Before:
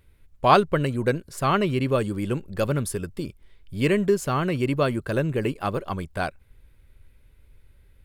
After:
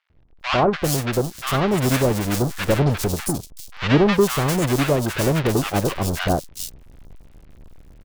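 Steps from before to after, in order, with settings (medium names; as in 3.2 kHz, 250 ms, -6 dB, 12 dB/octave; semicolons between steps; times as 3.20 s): square wave that keeps the level; three bands offset in time mids, lows, highs 100/400 ms, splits 1.1/4.3 kHz; gain riding 2 s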